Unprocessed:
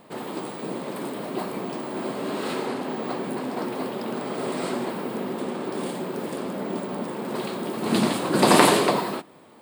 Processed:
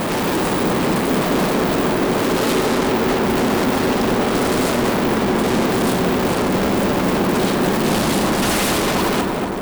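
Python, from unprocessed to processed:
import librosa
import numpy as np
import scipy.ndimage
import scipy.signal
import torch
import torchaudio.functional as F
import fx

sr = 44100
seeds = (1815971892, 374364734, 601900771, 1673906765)

p1 = fx.low_shelf(x, sr, hz=290.0, db=5.0)
p2 = fx.rider(p1, sr, range_db=10, speed_s=0.5)
p3 = p1 + F.gain(torch.from_numpy(p2), -2.0).numpy()
p4 = 10.0 ** (-15.0 / 20.0) * (np.abs((p3 / 10.0 ** (-15.0 / 20.0) + 3.0) % 4.0 - 2.0) - 1.0)
p5 = fx.tremolo_shape(p4, sr, shape='saw_down', hz=0.92, depth_pct=75)
p6 = fx.fuzz(p5, sr, gain_db=54.0, gate_db=-51.0)
p7 = p6 + fx.echo_filtered(p6, sr, ms=236, feedback_pct=79, hz=1600.0, wet_db=-4.5, dry=0)
y = F.gain(torch.from_numpy(p7), -6.0).numpy()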